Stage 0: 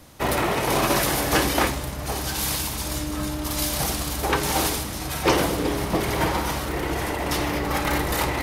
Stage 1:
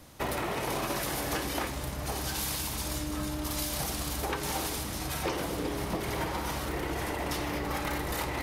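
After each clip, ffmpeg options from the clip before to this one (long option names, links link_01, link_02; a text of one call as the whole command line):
ffmpeg -i in.wav -af "acompressor=threshold=-25dB:ratio=6,volume=-4dB" out.wav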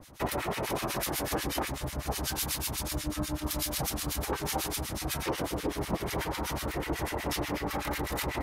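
ffmpeg -i in.wav -filter_complex "[0:a]acrossover=split=1300[link_01][link_02];[link_01]aeval=exprs='val(0)*(1-1/2+1/2*cos(2*PI*8.1*n/s))':channel_layout=same[link_03];[link_02]aeval=exprs='val(0)*(1-1/2-1/2*cos(2*PI*8.1*n/s))':channel_layout=same[link_04];[link_03][link_04]amix=inputs=2:normalize=0,volume=4.5dB" out.wav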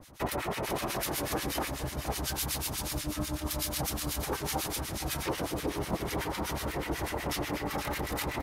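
ffmpeg -i in.wav -af "aecho=1:1:469:0.299,volume=-1dB" out.wav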